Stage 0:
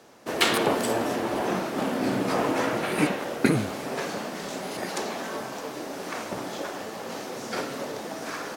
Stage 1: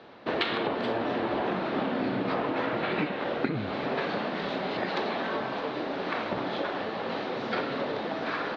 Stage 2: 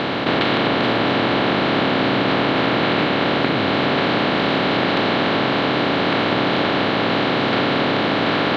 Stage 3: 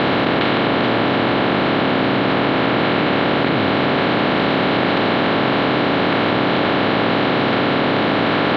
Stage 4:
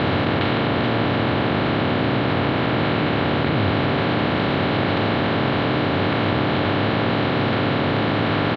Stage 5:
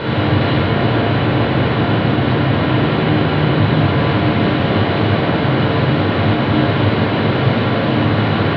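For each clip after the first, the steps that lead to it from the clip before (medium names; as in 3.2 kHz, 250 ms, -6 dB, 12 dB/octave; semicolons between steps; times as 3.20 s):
Chebyshev low-pass 4 kHz, order 4; compression 12:1, threshold -29 dBFS, peak gain reduction 14 dB; trim +4 dB
spectral levelling over time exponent 0.2; trim +3 dB
distance through air 130 m; level flattener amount 100%
peaking EQ 94 Hz +15 dB 0.95 oct; doubling 13 ms -14 dB; trim -5 dB
simulated room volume 2000 m³, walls mixed, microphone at 4.8 m; trim -4.5 dB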